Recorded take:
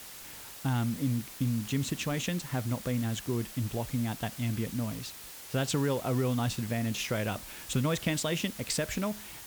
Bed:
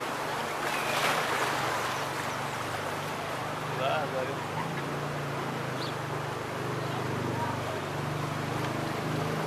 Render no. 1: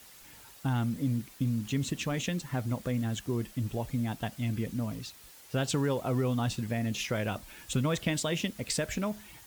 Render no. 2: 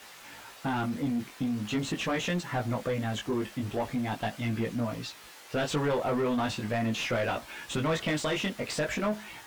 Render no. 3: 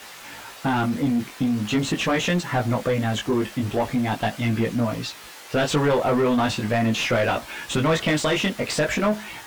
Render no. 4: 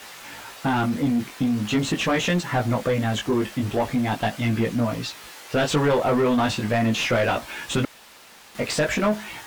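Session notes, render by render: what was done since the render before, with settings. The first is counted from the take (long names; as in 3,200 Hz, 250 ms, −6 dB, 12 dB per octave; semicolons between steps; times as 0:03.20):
broadband denoise 8 dB, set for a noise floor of −46 dBFS
chorus effect 0.41 Hz, delay 17 ms, depth 3.7 ms; mid-hump overdrive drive 22 dB, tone 1,800 Hz, clips at −19 dBFS
level +8 dB
0:07.85–0:08.55: fill with room tone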